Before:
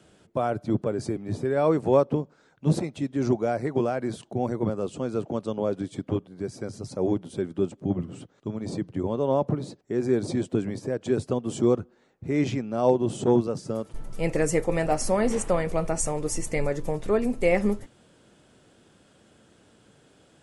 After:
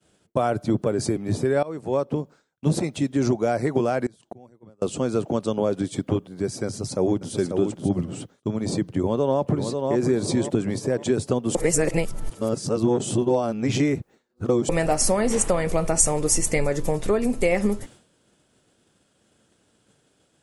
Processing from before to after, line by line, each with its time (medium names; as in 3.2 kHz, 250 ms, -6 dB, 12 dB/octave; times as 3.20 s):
1.63–2.73 s: fade in, from -21.5 dB
4.06–4.82 s: inverted gate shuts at -27 dBFS, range -26 dB
6.67–7.34 s: echo throw 540 ms, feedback 10%, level -6.5 dB
8.88–9.94 s: echo throw 540 ms, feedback 35%, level -8 dB
11.55–14.69 s: reverse
whole clip: compression, threshold -23 dBFS; treble shelf 4.8 kHz +8 dB; expander -47 dBFS; trim +6 dB